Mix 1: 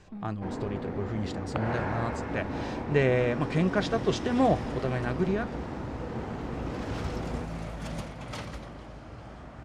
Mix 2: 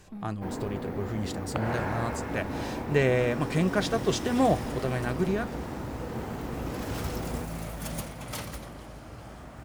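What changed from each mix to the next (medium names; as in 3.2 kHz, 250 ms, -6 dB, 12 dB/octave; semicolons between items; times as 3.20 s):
master: remove distance through air 96 m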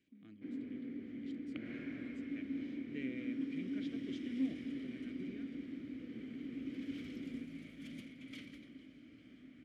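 speech -8.5 dB; master: add vowel filter i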